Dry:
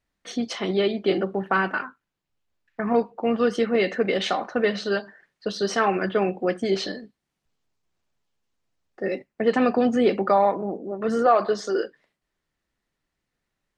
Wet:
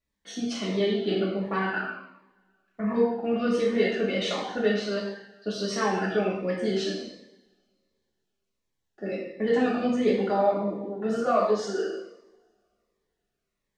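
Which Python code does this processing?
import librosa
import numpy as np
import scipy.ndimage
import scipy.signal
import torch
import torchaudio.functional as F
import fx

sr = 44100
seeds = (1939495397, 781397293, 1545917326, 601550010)

y = fx.rev_double_slope(x, sr, seeds[0], early_s=0.84, late_s=2.4, knee_db=-27, drr_db=-5.0)
y = fx.notch_cascade(y, sr, direction='falling', hz=1.4)
y = F.gain(torch.from_numpy(y), -7.5).numpy()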